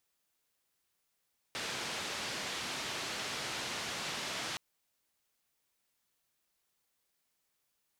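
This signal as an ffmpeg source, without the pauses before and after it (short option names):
-f lavfi -i "anoisesrc=c=white:d=3.02:r=44100:seed=1,highpass=f=97,lowpass=f=4700,volume=-27.7dB"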